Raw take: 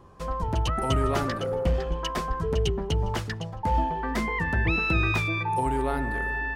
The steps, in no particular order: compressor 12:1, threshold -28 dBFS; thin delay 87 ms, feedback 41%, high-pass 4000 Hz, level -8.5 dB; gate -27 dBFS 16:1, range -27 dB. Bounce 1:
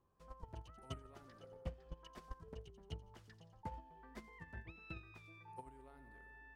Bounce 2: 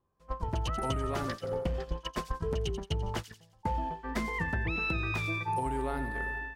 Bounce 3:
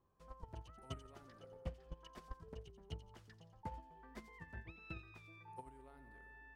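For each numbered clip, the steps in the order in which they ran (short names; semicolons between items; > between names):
thin delay > compressor > gate; gate > thin delay > compressor; compressor > gate > thin delay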